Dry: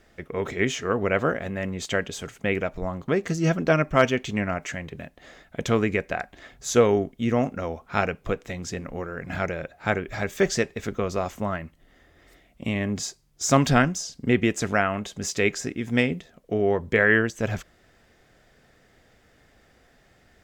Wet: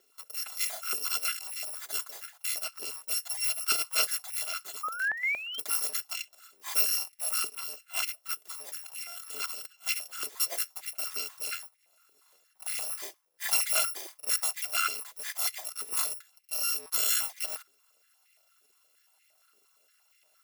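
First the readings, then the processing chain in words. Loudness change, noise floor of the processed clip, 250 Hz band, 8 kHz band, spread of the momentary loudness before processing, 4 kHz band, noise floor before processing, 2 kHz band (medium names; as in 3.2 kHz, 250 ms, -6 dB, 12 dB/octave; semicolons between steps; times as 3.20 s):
-4.5 dB, -69 dBFS, under -35 dB, +3.5 dB, 13 LU, +2.5 dB, -60 dBFS, -8.5 dB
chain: bit-reversed sample order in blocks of 256 samples; painted sound rise, 4.83–5.60 s, 1.2–3.3 kHz -31 dBFS; step-sequenced high-pass 8.6 Hz 400–2100 Hz; trim -8.5 dB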